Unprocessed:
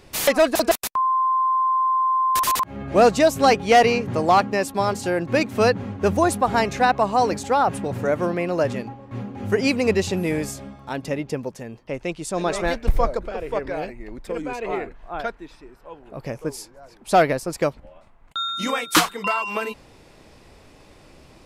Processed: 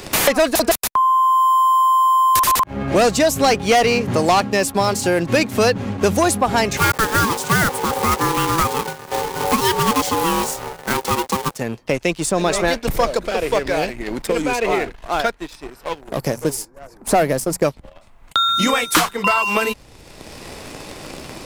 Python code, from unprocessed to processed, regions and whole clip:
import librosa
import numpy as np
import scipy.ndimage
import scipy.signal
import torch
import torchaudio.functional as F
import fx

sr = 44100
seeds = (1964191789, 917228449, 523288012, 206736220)

y = fx.chain(x, sr, fx.block_float(bits=3),
    fx.ring_mod(carrier_hz=660.0), at=(6.77, 11.57))
y = fx.chain(y, sr, fx.peak_eq(hz=3100.0, db=-14.5, octaves=1.2),
    fx.hum_notches(base_hz=60, count=4), at=(16.01, 17.65))
y = fx.high_shelf(y, sr, hz=4400.0, db=6.5)
y = fx.leveller(y, sr, passes=2)
y = fx.band_squash(y, sr, depth_pct=70)
y = y * librosa.db_to_amplitude(-2.5)